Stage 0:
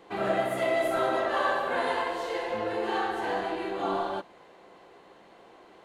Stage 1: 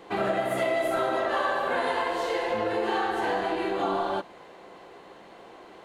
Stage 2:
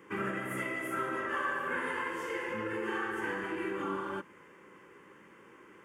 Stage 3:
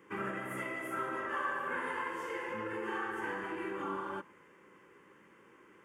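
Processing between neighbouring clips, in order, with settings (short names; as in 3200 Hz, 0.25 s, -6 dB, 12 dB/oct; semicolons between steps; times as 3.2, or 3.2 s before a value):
compressor 4:1, threshold -29 dBFS, peak gain reduction 7 dB; gain +5.5 dB
HPF 83 Hz; fixed phaser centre 1700 Hz, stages 4; gain -2.5 dB
dynamic EQ 860 Hz, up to +5 dB, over -51 dBFS, Q 1.2; gain -4.5 dB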